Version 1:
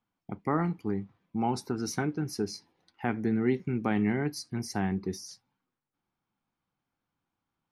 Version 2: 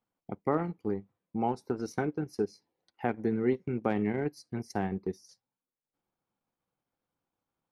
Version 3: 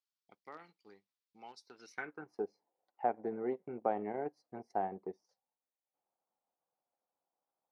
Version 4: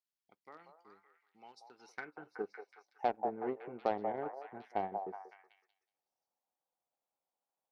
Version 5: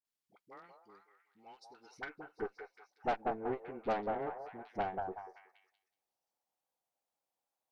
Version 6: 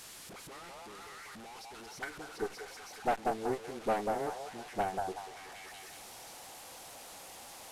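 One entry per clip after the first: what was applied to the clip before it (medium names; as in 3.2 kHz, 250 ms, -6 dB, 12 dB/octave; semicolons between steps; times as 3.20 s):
peaking EQ 520 Hz +9 dB 0.96 oct; transient shaper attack +2 dB, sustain -11 dB; trim -4.5 dB
band-pass sweep 4.6 kHz -> 710 Hz, 1.66–2.41 s; trim +2.5 dB
Chebyshev shaper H 7 -25 dB, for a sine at -18.5 dBFS; repeats whose band climbs or falls 186 ms, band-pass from 720 Hz, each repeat 0.7 oct, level -3.5 dB
phase dispersion highs, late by 50 ms, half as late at 540 Hz; valve stage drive 30 dB, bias 0.65; trim +4 dB
one-bit delta coder 64 kbps, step -45.5 dBFS; trim +3 dB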